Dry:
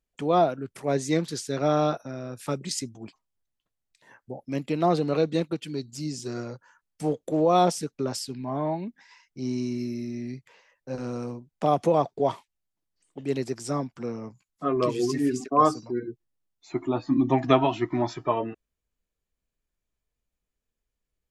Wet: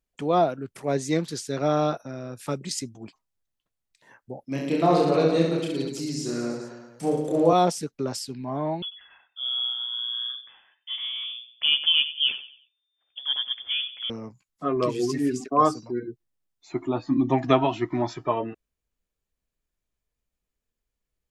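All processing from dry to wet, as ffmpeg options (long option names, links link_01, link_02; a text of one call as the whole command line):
ffmpeg -i in.wav -filter_complex "[0:a]asettb=1/sr,asplit=3[link_01][link_02][link_03];[link_01]atrim=end=4.444[link_04];[link_02]atrim=start=4.44:end=7.53,asetpts=PTS-STARTPTS,afade=type=in:duration=0.004:curve=qsin,afade=type=out:start_time=3.086:duration=0.004:curve=qsin,highpass=130,aecho=1:1:30|67.5|114.4|173|246.2|337.8|452.2:0.794|0.631|0.501|0.398|0.316|0.251|0.2,atrim=end_sample=136269[link_05];[link_03]atrim=start=7.526[link_06];[link_04][link_05]acrossfade=duration=0.004:curve1=hsin:curve2=qsin[link_07];[link_07][link_06]acrossfade=duration=0.004:curve1=qsin:curve2=hsin,asettb=1/sr,asplit=3[link_08][link_09][link_10];[link_08]atrim=end=8.824[link_11];[link_09]atrim=start=8.82:end=14.1,asetpts=PTS-STARTPTS,afade=type=in:duration=0.004:curve=qsin,afade=type=out:start_time=5.276:duration=0.004:curve=qsin,asplit=2[link_12][link_13];[link_13]adelay=92,lowpass=frequency=1600:poles=1,volume=-12.5dB,asplit=2[link_14][link_15];[link_15]adelay=92,lowpass=frequency=1600:poles=1,volume=0.39,asplit=2[link_16][link_17];[link_17]adelay=92,lowpass=frequency=1600:poles=1,volume=0.39,asplit=2[link_18][link_19];[link_19]adelay=92,lowpass=frequency=1600:poles=1,volume=0.39[link_20];[link_12][link_14][link_16][link_18][link_20]amix=inputs=5:normalize=0,atrim=end_sample=232848,lowpass=frequency=3100:width_type=q:width=0.5098,lowpass=frequency=3100:width_type=q:width=0.6013,lowpass=frequency=3100:width_type=q:width=0.9,lowpass=frequency=3100:width_type=q:width=2.563,afreqshift=-3600[link_21];[link_10]atrim=start=14.096[link_22];[link_11][link_21]acrossfade=duration=0.004:curve1=hsin:curve2=qsin[link_23];[link_23][link_22]acrossfade=duration=0.004:curve1=qsin:curve2=hsin" out.wav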